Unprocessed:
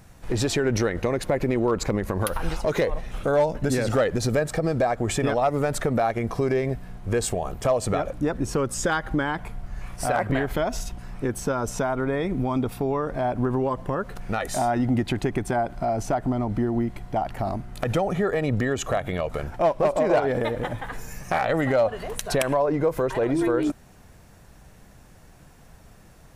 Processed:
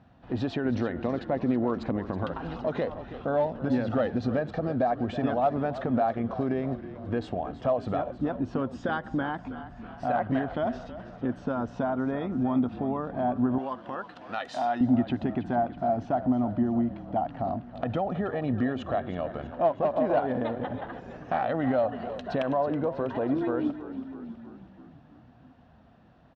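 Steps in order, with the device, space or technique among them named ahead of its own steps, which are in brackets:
frequency-shifting delay pedal into a guitar cabinet (echo with shifted repeats 323 ms, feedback 61%, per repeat −37 Hz, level −13 dB; loudspeaker in its box 75–3,500 Hz, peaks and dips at 250 Hz +9 dB, 420 Hz −4 dB, 710 Hz +6 dB, 2,200 Hz −9 dB)
0:13.58–0:14.81: spectral tilt +4.5 dB per octave
level −6.5 dB

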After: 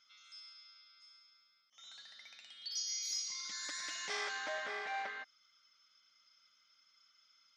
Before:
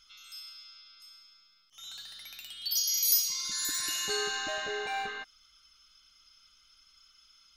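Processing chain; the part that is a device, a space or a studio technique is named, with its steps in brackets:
full-range speaker at full volume (highs frequency-modulated by the lows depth 0.4 ms; loudspeaker in its box 240–6,200 Hz, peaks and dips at 380 Hz −9 dB, 570 Hz +5 dB, 2,000 Hz +6 dB, 2,800 Hz −7 dB, 4,100 Hz −4 dB)
level −6 dB

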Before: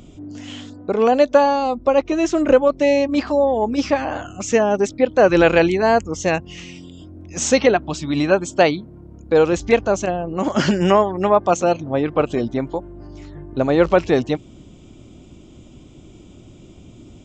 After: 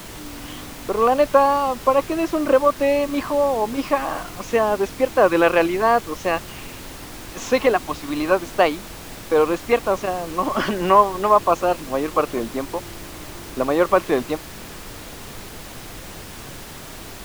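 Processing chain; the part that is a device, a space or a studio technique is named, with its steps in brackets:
horn gramophone (band-pass filter 260–3,800 Hz; parametric band 1,100 Hz +11.5 dB 0.28 octaves; tape wow and flutter; pink noise bed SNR 15 dB)
level −2.5 dB

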